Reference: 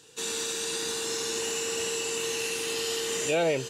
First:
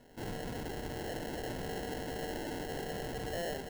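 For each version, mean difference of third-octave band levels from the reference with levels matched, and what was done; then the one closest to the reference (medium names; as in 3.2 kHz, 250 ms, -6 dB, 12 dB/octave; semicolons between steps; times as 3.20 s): 9.5 dB: frequency weighting A; saturation -33 dBFS, distortion -9 dB; comb of notches 290 Hz; sample-rate reducer 1.2 kHz, jitter 0%; trim -1.5 dB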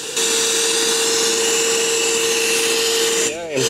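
3.5 dB: Bessel high-pass 240 Hz, order 2; compressor with a negative ratio -35 dBFS, ratio -0.5; on a send: frequency-shifting echo 83 ms, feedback 36%, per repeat -120 Hz, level -17.5 dB; on the sum: loudness maximiser +29.5 dB; trim -7 dB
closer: second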